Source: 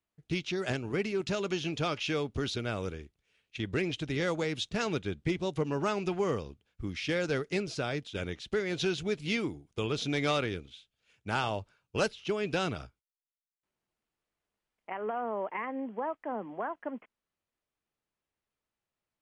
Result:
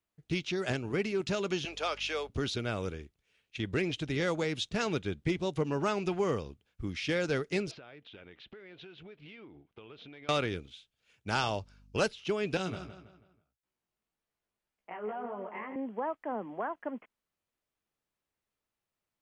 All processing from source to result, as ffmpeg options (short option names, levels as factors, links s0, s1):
-filter_complex "[0:a]asettb=1/sr,asplit=3[s0][s1][s2];[s0]atrim=end=1.654[s3];[s1]atrim=start=1.65:end=2.3,asetpts=PTS-STARTPTS,afade=t=in:d=0.004:c=qsin,afade=t=out:st=0.646:d=0.004:c=qsin,highpass=f=450:w=0.5412,highpass=f=450:w=1.3066,aeval=exprs='val(0)+0.00178*(sin(2*PI*50*n/s)+sin(2*PI*2*50*n/s)/2+sin(2*PI*3*50*n/s)/3+sin(2*PI*4*50*n/s)/4+sin(2*PI*5*50*n/s)/5)':c=same[s4];[s2]atrim=start=2.296[s5];[s3][s4]acrossfade=d=0.004:c1=hsin:c2=qsin[s6];[s6][s5]acrossfade=d=0.004:c1=qsin:c2=hsin,asettb=1/sr,asplit=3[s7][s8][s9];[s7]atrim=end=7.714[s10];[s8]atrim=start=7.71:end=10.29,asetpts=PTS-STARTPTS,afade=t=in:d=0.004:c=qsin,afade=t=out:st=2.576:d=0.004:c=qsin,lowpass=f=3200:w=0.5412,lowpass=f=3200:w=1.3066,lowshelf=f=200:g=-11,acompressor=threshold=0.00447:ratio=8:attack=3.2:release=140:knee=1:detection=peak[s11];[s9]atrim=start=10.286[s12];[s10][s11]acrossfade=d=0.004:c1=hsin:c2=qsin[s13];[s13][s12]acrossfade=d=0.004:c1=qsin:c2=hsin,asettb=1/sr,asplit=3[s14][s15][s16];[s14]atrim=end=11.284[s17];[s15]atrim=start=11.28:end=11.97,asetpts=PTS-STARTPTS,afade=t=in:d=0.004:c=qsin,afade=t=out:st=0.686:d=0.004:c=qsin,equalizer=f=5300:w=1.9:g=9.5,aeval=exprs='val(0)+0.00126*(sin(2*PI*50*n/s)+sin(2*PI*2*50*n/s)/2+sin(2*PI*3*50*n/s)/3+sin(2*PI*4*50*n/s)/4+sin(2*PI*5*50*n/s)/5)':c=same[s18];[s16]atrim=start=11.966[s19];[s17][s18]acrossfade=d=0.004:c1=hsin:c2=qsin[s20];[s20][s19]acrossfade=d=0.004:c1=qsin:c2=hsin,asettb=1/sr,asplit=3[s21][s22][s23];[s21]atrim=end=12.574[s24];[s22]atrim=start=12.57:end=15.76,asetpts=PTS-STARTPTS,afade=t=in:d=0.004:c=qsin,afade=t=out:st=3.186:d=0.004:c=qsin,acrossover=split=390|3000[s25][s26][s27];[s26]acompressor=threshold=0.0141:ratio=2:attack=3.2:release=140:knee=2.83:detection=peak[s28];[s25][s28][s27]amix=inputs=3:normalize=0,flanger=delay=15.5:depth=3.5:speed=1.8,asplit=2[s29][s30];[s30]adelay=163,lowpass=f=4600:p=1,volume=0.316,asplit=2[s31][s32];[s32]adelay=163,lowpass=f=4600:p=1,volume=0.4,asplit=2[s33][s34];[s34]adelay=163,lowpass=f=4600:p=1,volume=0.4,asplit=2[s35][s36];[s36]adelay=163,lowpass=f=4600:p=1,volume=0.4[s37];[s29][s31][s33][s35][s37]amix=inputs=5:normalize=0,atrim=end_sample=140679[s38];[s23]atrim=start=15.756[s39];[s24][s38]acrossfade=d=0.004:c1=hsin:c2=qsin[s40];[s40][s39]acrossfade=d=0.004:c1=qsin:c2=hsin"